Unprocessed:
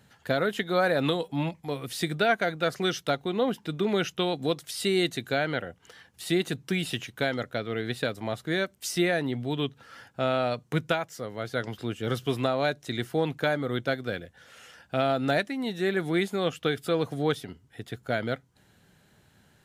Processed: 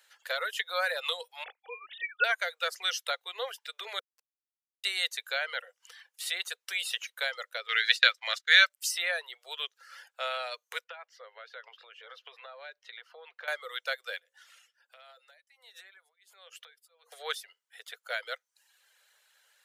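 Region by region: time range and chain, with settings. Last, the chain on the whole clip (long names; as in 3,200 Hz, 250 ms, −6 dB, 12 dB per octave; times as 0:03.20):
0:01.44–0:02.24: three sine waves on the formant tracks + dynamic equaliser 2,600 Hz, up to +4 dB, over −50 dBFS, Q 2.2
0:03.99–0:04.84: gate with flip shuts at −24 dBFS, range −36 dB + moving average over 37 samples + comparator with hysteresis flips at −41 dBFS
0:07.68–0:08.70: noise gate −39 dBFS, range −21 dB + flat-topped bell 3,000 Hz +13 dB 2.7 octaves
0:10.84–0:13.48: downward compressor 10 to 1, threshold −31 dBFS + high-frequency loss of the air 280 metres
0:14.20–0:17.12: downward compressor 20 to 1, threshold −39 dBFS + mains-hum notches 60/120/180/240/300/360/420/480/540 Hz + shaped tremolo triangle 1.4 Hz, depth 95%
whole clip: Butterworth high-pass 500 Hz 72 dB per octave; reverb reduction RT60 0.62 s; parametric band 680 Hz −13.5 dB 1.3 octaves; level +2.5 dB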